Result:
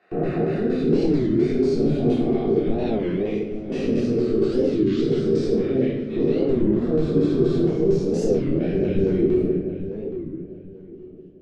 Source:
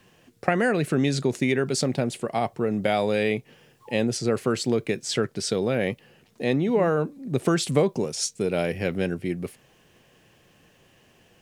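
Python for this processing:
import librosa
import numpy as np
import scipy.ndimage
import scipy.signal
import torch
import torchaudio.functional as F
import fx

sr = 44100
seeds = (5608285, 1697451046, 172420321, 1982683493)

p1 = fx.spec_swells(x, sr, rise_s=2.79)
p2 = fx.rider(p1, sr, range_db=4, speed_s=2.0)
p3 = fx.peak_eq(p2, sr, hz=380.0, db=7.5, octaves=0.63)
p4 = fx.level_steps(p3, sr, step_db=22)
p5 = fx.filter_lfo_bandpass(p4, sr, shape='square', hz=4.3, low_hz=270.0, high_hz=3600.0, q=1.4)
p6 = fx.tilt_eq(p5, sr, slope=-3.5)
p7 = p6 + fx.echo_filtered(p6, sr, ms=846, feedback_pct=29, hz=1900.0, wet_db=-10.5, dry=0)
p8 = fx.room_shoebox(p7, sr, seeds[0], volume_m3=370.0, walls='mixed', distance_m=3.4)
p9 = fx.record_warp(p8, sr, rpm=33.33, depth_cents=250.0)
y = F.gain(torch.from_numpy(p9), -8.5).numpy()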